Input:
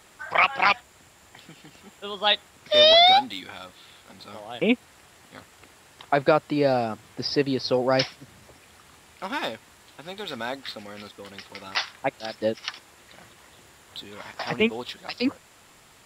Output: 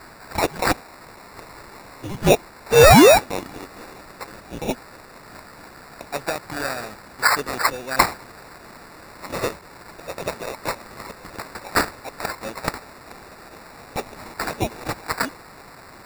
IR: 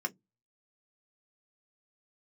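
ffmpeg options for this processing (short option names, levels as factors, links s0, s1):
-filter_complex "[0:a]asettb=1/sr,asplit=3[s0][s1][s2];[s0]atrim=end=7.964[s3];[s1]atrim=start=7.96:end=9.51,asetpts=PTS-STARTPTS,afade=t=in:d=0.004:c=qsin,afade=t=out:st=1.546:d=0.004:c=qsin,adynamicequalizer=threshold=0.0112:dfrequency=4700:dqfactor=1.3:tfrequency=4700:tqfactor=1.3:attack=5:release=100:ratio=0.375:range=1.5:mode=boostabove:tftype=bell[s4];[s2]atrim=start=9.506[s5];[s3][s4]acrossfade=d=0.004:c1=hsin:c2=qsin[s6];[s6][s5]acrossfade=d=0.004:c1=qsin:c2=hsin,aexciter=amount=9.9:drive=7.8:freq=2700,acrusher=samples=14:mix=1:aa=0.000001,volume=0.299"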